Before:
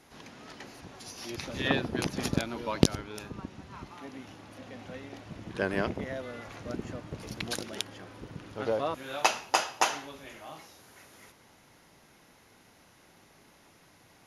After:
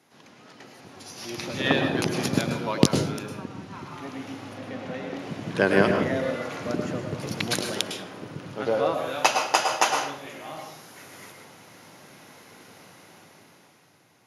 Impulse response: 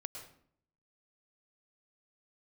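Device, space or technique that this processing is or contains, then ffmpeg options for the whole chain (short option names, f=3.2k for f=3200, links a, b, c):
far laptop microphone: -filter_complex "[0:a]asettb=1/sr,asplit=3[a][b][c];[a]atrim=end=4.534[d];[b]atrim=start=4.53:end=5.19,asetpts=PTS-STARTPTS,afade=t=in:d=0.004:c=qsin,afade=t=out:st=0.656:d=0.004:c=qsin,highshelf=f=4.9k:g=-8.5[e];[c]atrim=start=5.186[f];[d][e]acrossfade=d=0.004:c1=hsin:c2=qsin[g];[g][f]acrossfade=d=0.004:c1=qsin:c2=hsin[h];[1:a]atrim=start_sample=2205[i];[h][i]afir=irnorm=-1:irlink=0,highpass=f=110:w=0.5412,highpass=f=110:w=1.3066,dynaudnorm=f=190:g=13:m=13dB"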